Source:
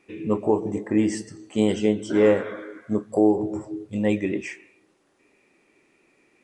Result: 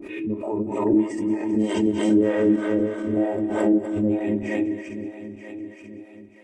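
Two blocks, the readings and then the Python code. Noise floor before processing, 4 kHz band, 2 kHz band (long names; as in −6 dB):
−64 dBFS, can't be measured, −0.5 dB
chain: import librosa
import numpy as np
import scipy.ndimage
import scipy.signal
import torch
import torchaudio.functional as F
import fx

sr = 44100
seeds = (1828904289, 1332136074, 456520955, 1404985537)

p1 = fx.reverse_delay_fb(x, sr, ms=233, feedback_pct=75, wet_db=-2.5)
p2 = fx.peak_eq(p1, sr, hz=6200.0, db=-8.0, octaves=1.6)
p3 = fx.level_steps(p2, sr, step_db=22)
p4 = p2 + (p3 * librosa.db_to_amplitude(0.0))
p5 = fx.harmonic_tremolo(p4, sr, hz=3.2, depth_pct=100, crossover_hz=520.0)
p6 = fx.dynamic_eq(p5, sr, hz=3000.0, q=1.2, threshold_db=-47.0, ratio=4.0, max_db=-4)
p7 = p6 + 0.59 * np.pad(p6, (int(3.2 * sr / 1000.0), 0))[:len(p6)]
p8 = fx.echo_thinned(p7, sr, ms=196, feedback_pct=53, hz=360.0, wet_db=-13.0)
p9 = fx.hpss(p8, sr, part='percussive', gain_db=-9)
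p10 = fx.pre_swell(p9, sr, db_per_s=51.0)
y = p10 * librosa.db_to_amplitude(-2.5)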